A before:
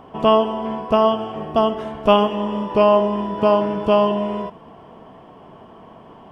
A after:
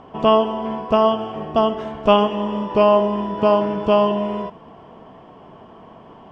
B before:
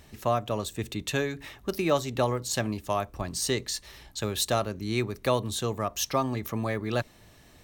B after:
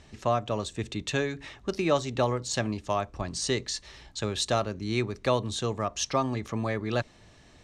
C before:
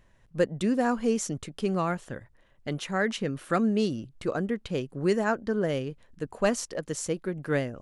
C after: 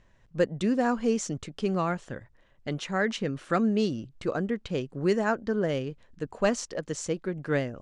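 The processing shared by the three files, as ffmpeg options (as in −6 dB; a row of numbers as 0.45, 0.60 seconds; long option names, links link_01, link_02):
-af "lowpass=frequency=7700:width=0.5412,lowpass=frequency=7700:width=1.3066"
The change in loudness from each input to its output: 0.0, 0.0, 0.0 LU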